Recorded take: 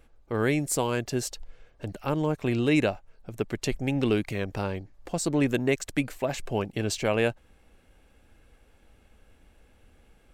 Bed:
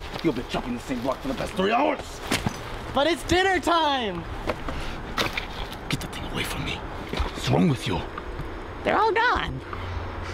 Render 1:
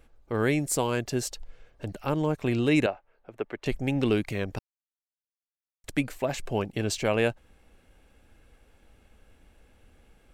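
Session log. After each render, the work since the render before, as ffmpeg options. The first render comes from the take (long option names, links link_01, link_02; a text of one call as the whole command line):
ffmpeg -i in.wav -filter_complex "[0:a]asettb=1/sr,asplit=3[link_01][link_02][link_03];[link_01]atrim=end=2.864[link_04];[link_02]atrim=start=2.86:end=3.66,asetpts=PTS-STARTPTS,afade=type=in:duration=0.004:curve=qsin,afade=type=out:start_time=0.796:duration=0.004:curve=qsin,acrossover=split=320 3000:gain=0.178 1 0.1[link_05][link_06][link_07];[link_05][link_06][link_07]amix=inputs=3:normalize=0[link_08];[link_03]atrim=start=3.656[link_09];[link_04][link_08]acrossfade=duration=0.004:curve1=hsin:curve2=qsin[link_10];[link_10][link_09]acrossfade=duration=0.004:curve1=qsin:curve2=hsin,asplit=3[link_11][link_12][link_13];[link_11]atrim=end=4.59,asetpts=PTS-STARTPTS,afade=type=out:start_time=4.586:duration=0.004:curve=hsin[link_14];[link_12]atrim=start=4.59:end=5.84,asetpts=PTS-STARTPTS,volume=0[link_15];[link_13]atrim=start=5.84,asetpts=PTS-STARTPTS,afade=type=in:duration=0.004:curve=hsin[link_16];[link_14][link_15][link_16]concat=n=3:v=0:a=1" out.wav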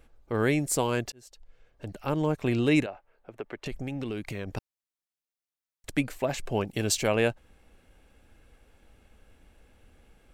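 ffmpeg -i in.wav -filter_complex "[0:a]asettb=1/sr,asplit=3[link_01][link_02][link_03];[link_01]atrim=end=2.824[link_04];[link_02]atrim=start=2.82:end=4.47,asetpts=PTS-STARTPTS,afade=type=in:duration=0.004:curve=qsin,afade=type=out:start_time=1.646:duration=0.004:curve=qsin,acompressor=threshold=-31dB:ratio=4:attack=3.2:release=140:knee=1:detection=peak[link_05];[link_03]atrim=start=4.466[link_06];[link_04][link_05]acrossfade=duration=0.004:curve1=hsin:curve2=qsin[link_07];[link_07][link_06]acrossfade=duration=0.004:curve1=qsin:curve2=hsin,asettb=1/sr,asplit=3[link_08][link_09][link_10];[link_08]atrim=end=6.674[link_11];[link_09]atrim=start=6.67:end=7.07,asetpts=PTS-STARTPTS,afade=type=in:duration=0.004:curve=qsin,afade=type=out:start_time=0.396:duration=0.004:curve=qsin,aemphasis=mode=production:type=cd[link_12];[link_10]atrim=start=7.066[link_13];[link_11][link_12]acrossfade=duration=0.004:curve1=hsin:curve2=qsin[link_14];[link_14][link_13]acrossfade=duration=0.004:curve1=qsin:curve2=hsin,asplit=2[link_15][link_16];[link_15]atrim=end=1.12,asetpts=PTS-STARTPTS,afade=type=out:start_time=1.116:duration=0.004:curve=hsin[link_17];[link_16]atrim=start=1.12,asetpts=PTS-STARTPTS,afade=type=in:duration=1.12[link_18];[link_17][link_18]concat=n=2:v=0:a=1" out.wav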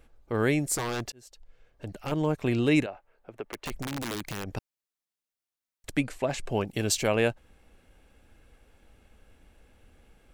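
ffmpeg -i in.wav -filter_complex "[0:a]asettb=1/sr,asplit=3[link_01][link_02][link_03];[link_01]atrim=end=0.754[link_04];[link_02]atrim=start=0.75:end=2.12,asetpts=PTS-STARTPTS,afade=type=in:duration=0.004:curve=qsin,afade=type=out:start_time=1.366:duration=0.004:curve=qsin,aeval=exprs='0.0596*(abs(mod(val(0)/0.0596+3,4)-2)-1)':channel_layout=same[link_05];[link_03]atrim=start=2.116[link_06];[link_04][link_05]acrossfade=duration=0.004:curve1=hsin:curve2=qsin[link_07];[link_07][link_06]acrossfade=duration=0.004:curve1=qsin:curve2=hsin,asettb=1/sr,asplit=3[link_08][link_09][link_10];[link_08]atrim=end=3.424[link_11];[link_09]atrim=start=3.42:end=4.44,asetpts=PTS-STARTPTS,afade=type=in:duration=0.004:curve=qsin,afade=type=out:start_time=1.016:duration=0.004:curve=qsin,aeval=exprs='(mod(22.4*val(0)+1,2)-1)/22.4':channel_layout=same[link_12];[link_10]atrim=start=4.436[link_13];[link_11][link_12]acrossfade=duration=0.004:curve1=hsin:curve2=qsin[link_14];[link_14][link_13]acrossfade=duration=0.004:curve1=qsin:curve2=hsin,asettb=1/sr,asplit=3[link_15][link_16][link_17];[link_15]atrim=end=5.984[link_18];[link_16]atrim=start=5.98:end=6.48,asetpts=PTS-STARTPTS,afade=type=in:duration=0.004:curve=qsin,afade=type=out:start_time=0.496:duration=0.004:curve=qsin,lowpass=frequency=11000:width=0.5412,lowpass=frequency=11000:width=1.3066[link_19];[link_17]atrim=start=6.476[link_20];[link_18][link_19]acrossfade=duration=0.004:curve1=hsin:curve2=qsin[link_21];[link_21][link_20]acrossfade=duration=0.004:curve1=qsin:curve2=hsin" out.wav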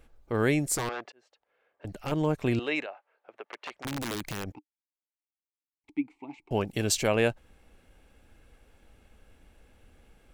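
ffmpeg -i in.wav -filter_complex "[0:a]asettb=1/sr,asplit=3[link_01][link_02][link_03];[link_01]atrim=end=0.894[link_04];[link_02]atrim=start=0.89:end=1.85,asetpts=PTS-STARTPTS,afade=type=in:duration=0.004:curve=qsin,afade=type=out:start_time=0.956:duration=0.004:curve=qsin,highpass=510,lowpass=2200[link_05];[link_03]atrim=start=1.846[link_06];[link_04][link_05]acrossfade=duration=0.004:curve1=hsin:curve2=qsin[link_07];[link_07][link_06]acrossfade=duration=0.004:curve1=qsin:curve2=hsin,asettb=1/sr,asplit=3[link_08][link_09][link_10];[link_08]atrim=end=2.594[link_11];[link_09]atrim=start=2.59:end=3.85,asetpts=PTS-STARTPTS,afade=type=in:duration=0.004:curve=qsin,afade=type=out:start_time=1.256:duration=0.004:curve=qsin,highpass=590,lowpass=3600[link_12];[link_10]atrim=start=3.846[link_13];[link_11][link_12]acrossfade=duration=0.004:curve1=hsin:curve2=qsin[link_14];[link_14][link_13]acrossfade=duration=0.004:curve1=qsin:curve2=hsin,asettb=1/sr,asplit=3[link_15][link_16][link_17];[link_15]atrim=end=4.524[link_18];[link_16]atrim=start=4.52:end=6.51,asetpts=PTS-STARTPTS,afade=type=in:duration=0.004:curve=qsin,afade=type=out:start_time=1.986:duration=0.004:curve=qsin,asplit=3[link_19][link_20][link_21];[link_19]bandpass=frequency=300:width_type=q:width=8,volume=0dB[link_22];[link_20]bandpass=frequency=870:width_type=q:width=8,volume=-6dB[link_23];[link_21]bandpass=frequency=2240:width_type=q:width=8,volume=-9dB[link_24];[link_22][link_23][link_24]amix=inputs=3:normalize=0[link_25];[link_17]atrim=start=6.506[link_26];[link_18][link_25]acrossfade=duration=0.004:curve1=hsin:curve2=qsin[link_27];[link_27][link_26]acrossfade=duration=0.004:curve1=qsin:curve2=hsin" out.wav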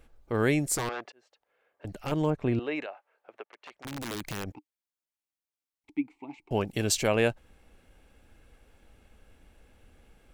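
ffmpeg -i in.wav -filter_complex "[0:a]asettb=1/sr,asplit=3[link_01][link_02][link_03];[link_01]atrim=end=2.304[link_04];[link_02]atrim=start=2.3:end=2.82,asetpts=PTS-STARTPTS,afade=type=in:duration=0.004:curve=qsin,afade=type=out:start_time=0.516:duration=0.004:curve=qsin,lowpass=frequency=1300:poles=1[link_05];[link_03]atrim=start=2.816[link_06];[link_04][link_05]acrossfade=duration=0.004:curve1=hsin:curve2=qsin[link_07];[link_07][link_06]acrossfade=duration=0.004:curve1=qsin:curve2=hsin,asplit=2[link_08][link_09];[link_08]atrim=end=3.44,asetpts=PTS-STARTPTS,afade=type=out:start_time=3.436:duration=0.004:curve=hsin:silence=0.199526[link_10];[link_09]atrim=start=3.44,asetpts=PTS-STARTPTS,afade=type=in:duration=0.92:silence=0.199526[link_11];[link_10][link_11]concat=n=2:v=0:a=1" out.wav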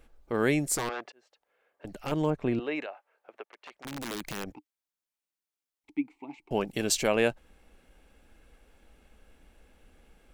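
ffmpeg -i in.wav -af "equalizer=frequency=100:width=3.1:gain=-13" out.wav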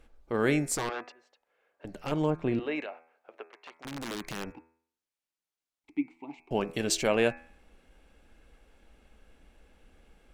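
ffmpeg -i in.wav -af "highshelf=frequency=12000:gain=-11,bandreject=frequency=81.8:width_type=h:width=4,bandreject=frequency=163.6:width_type=h:width=4,bandreject=frequency=245.4:width_type=h:width=4,bandreject=frequency=327.2:width_type=h:width=4,bandreject=frequency=409:width_type=h:width=4,bandreject=frequency=490.8:width_type=h:width=4,bandreject=frequency=572.6:width_type=h:width=4,bandreject=frequency=654.4:width_type=h:width=4,bandreject=frequency=736.2:width_type=h:width=4,bandreject=frequency=818:width_type=h:width=4,bandreject=frequency=899.8:width_type=h:width=4,bandreject=frequency=981.6:width_type=h:width=4,bandreject=frequency=1063.4:width_type=h:width=4,bandreject=frequency=1145.2:width_type=h:width=4,bandreject=frequency=1227:width_type=h:width=4,bandreject=frequency=1308.8:width_type=h:width=4,bandreject=frequency=1390.6:width_type=h:width=4,bandreject=frequency=1472.4:width_type=h:width=4,bandreject=frequency=1554.2:width_type=h:width=4,bandreject=frequency=1636:width_type=h:width=4,bandreject=frequency=1717.8:width_type=h:width=4,bandreject=frequency=1799.6:width_type=h:width=4,bandreject=frequency=1881.4:width_type=h:width=4,bandreject=frequency=1963.2:width_type=h:width=4,bandreject=frequency=2045:width_type=h:width=4,bandreject=frequency=2126.8:width_type=h:width=4,bandreject=frequency=2208.6:width_type=h:width=4,bandreject=frequency=2290.4:width_type=h:width=4,bandreject=frequency=2372.2:width_type=h:width=4,bandreject=frequency=2454:width_type=h:width=4,bandreject=frequency=2535.8:width_type=h:width=4,bandreject=frequency=2617.6:width_type=h:width=4" out.wav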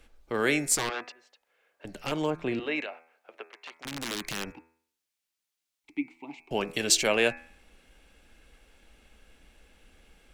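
ffmpeg -i in.wav -filter_complex "[0:a]acrossover=split=250|1800[link_01][link_02][link_03];[link_01]alimiter=level_in=11dB:limit=-24dB:level=0:latency=1,volume=-11dB[link_04];[link_03]acontrast=90[link_05];[link_04][link_02][link_05]amix=inputs=3:normalize=0" out.wav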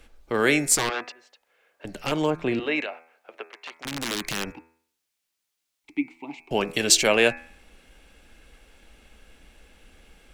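ffmpeg -i in.wav -af "volume=5dB" out.wav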